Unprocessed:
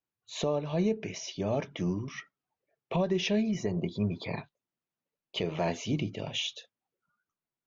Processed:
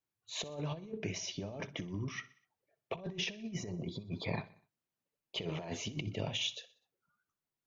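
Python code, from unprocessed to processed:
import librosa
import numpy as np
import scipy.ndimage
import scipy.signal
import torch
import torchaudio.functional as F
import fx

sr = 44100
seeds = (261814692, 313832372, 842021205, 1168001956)

y = fx.peak_eq(x, sr, hz=98.0, db=4.5, octaves=0.66)
y = fx.over_compress(y, sr, threshold_db=-33.0, ratio=-0.5)
y = fx.echo_feedback(y, sr, ms=62, feedback_pct=53, wet_db=-19)
y = y * 10.0 ** (-5.0 / 20.0)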